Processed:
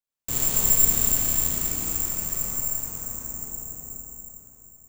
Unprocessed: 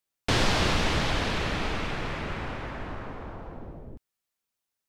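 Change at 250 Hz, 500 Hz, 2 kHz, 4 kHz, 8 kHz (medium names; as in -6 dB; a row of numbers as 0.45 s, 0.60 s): -5.5 dB, -9.0 dB, -11.5 dB, -8.0 dB, +19.5 dB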